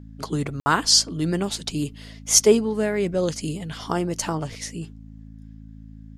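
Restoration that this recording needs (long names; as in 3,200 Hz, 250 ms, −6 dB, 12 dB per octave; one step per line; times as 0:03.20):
hum removal 54.1 Hz, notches 5
ambience match 0:00.60–0:00.66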